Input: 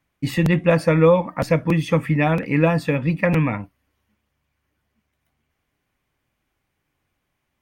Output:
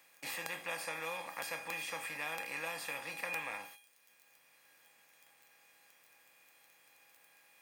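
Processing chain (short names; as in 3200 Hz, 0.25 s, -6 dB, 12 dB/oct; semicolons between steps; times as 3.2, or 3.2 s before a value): per-bin compression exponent 0.4; dynamic EQ 940 Hz, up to +5 dB, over -28 dBFS, Q 1.1; gate -28 dBFS, range -17 dB; crackle 10/s -41 dBFS; differentiator; resonator 810 Hz, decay 0.38 s, mix 90%; three-band squash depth 40%; gain +7.5 dB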